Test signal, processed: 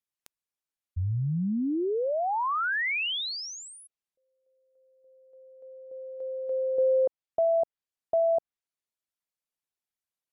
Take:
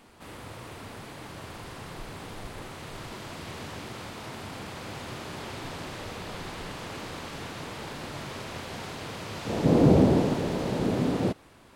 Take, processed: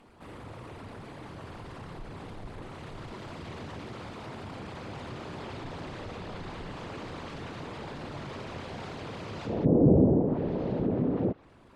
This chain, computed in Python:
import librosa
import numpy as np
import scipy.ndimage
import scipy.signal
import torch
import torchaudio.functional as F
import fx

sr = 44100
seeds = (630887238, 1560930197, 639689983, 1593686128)

y = fx.envelope_sharpen(x, sr, power=1.5)
y = fx.env_lowpass_down(y, sr, base_hz=950.0, full_db=-19.0)
y = F.gain(torch.from_numpy(y), -1.5).numpy()